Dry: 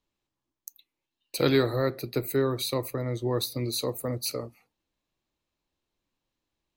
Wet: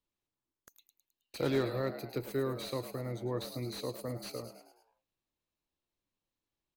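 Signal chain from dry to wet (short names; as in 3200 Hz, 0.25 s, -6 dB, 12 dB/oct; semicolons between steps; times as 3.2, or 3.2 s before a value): frequency-shifting echo 0.106 s, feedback 49%, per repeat +82 Hz, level -12 dB; slew limiter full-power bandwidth 98 Hz; gain -8 dB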